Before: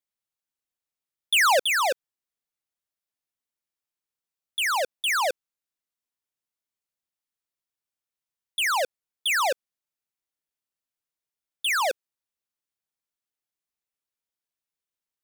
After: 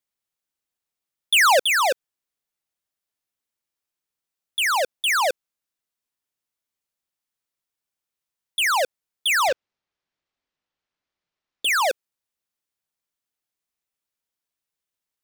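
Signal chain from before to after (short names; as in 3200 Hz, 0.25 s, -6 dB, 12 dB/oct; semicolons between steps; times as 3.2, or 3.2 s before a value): 9.48–11.65 decimation joined by straight lines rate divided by 4×; gain +3.5 dB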